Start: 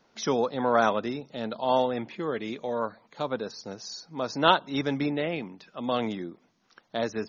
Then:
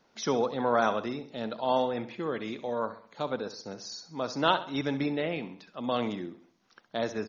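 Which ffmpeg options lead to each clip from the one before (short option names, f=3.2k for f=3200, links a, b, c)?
-filter_complex "[0:a]asplit=2[a][b];[b]alimiter=limit=-13.5dB:level=0:latency=1:release=492,volume=-2dB[c];[a][c]amix=inputs=2:normalize=0,aecho=1:1:66|132|198|264:0.211|0.093|0.0409|0.018,volume=-7dB"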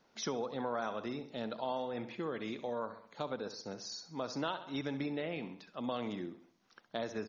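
-af "acompressor=threshold=-31dB:ratio=4,volume=-3dB"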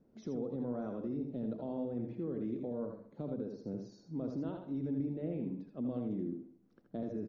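-filter_complex "[0:a]firequalizer=gain_entry='entry(280,0);entry(890,-22);entry(3200,-30)':delay=0.05:min_phase=1,alimiter=level_in=14dB:limit=-24dB:level=0:latency=1,volume=-14dB,asplit=2[a][b];[b]aecho=0:1:74|81:0.126|0.501[c];[a][c]amix=inputs=2:normalize=0,volume=7.5dB"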